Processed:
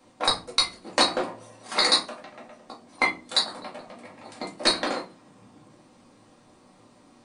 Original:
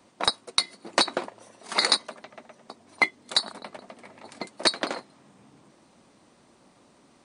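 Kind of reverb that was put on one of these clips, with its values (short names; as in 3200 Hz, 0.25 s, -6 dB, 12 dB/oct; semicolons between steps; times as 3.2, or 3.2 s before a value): shoebox room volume 160 m³, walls furnished, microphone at 2.2 m; gain -3 dB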